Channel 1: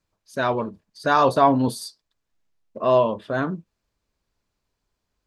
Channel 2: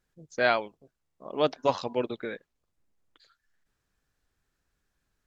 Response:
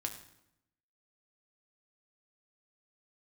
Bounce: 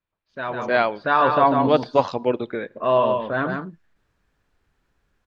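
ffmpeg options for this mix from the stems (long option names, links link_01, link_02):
-filter_complex "[0:a]lowpass=frequency=3600:width=0.5412,lowpass=frequency=3600:width=1.3066,tiltshelf=frequency=1100:gain=-5.5,volume=-5dB,asplit=2[link_01][link_02];[link_02]volume=-5dB[link_03];[1:a]adelay=300,volume=0dB,asplit=2[link_04][link_05];[link_05]volume=-18dB[link_06];[2:a]atrim=start_sample=2205[link_07];[link_06][link_07]afir=irnorm=-1:irlink=0[link_08];[link_03]aecho=0:1:146:1[link_09];[link_01][link_04][link_08][link_09]amix=inputs=4:normalize=0,highshelf=frequency=3600:gain=-11.5,dynaudnorm=framelen=480:gausssize=3:maxgain=8.5dB"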